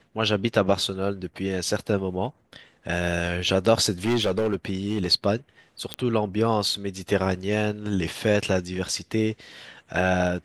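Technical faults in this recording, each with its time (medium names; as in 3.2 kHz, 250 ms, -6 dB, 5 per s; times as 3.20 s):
4.04–5.08 s: clipped -18.5 dBFS
5.94 s: pop -12 dBFS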